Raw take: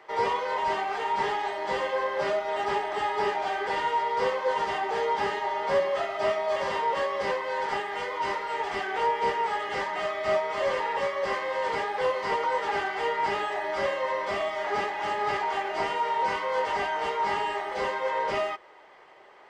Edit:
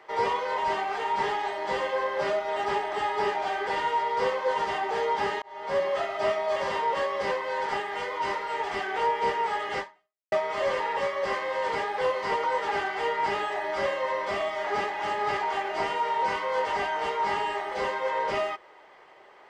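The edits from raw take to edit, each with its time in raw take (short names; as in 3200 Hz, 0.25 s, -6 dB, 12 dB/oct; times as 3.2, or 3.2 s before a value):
5.42–5.87 fade in
9.79–10.32 fade out exponential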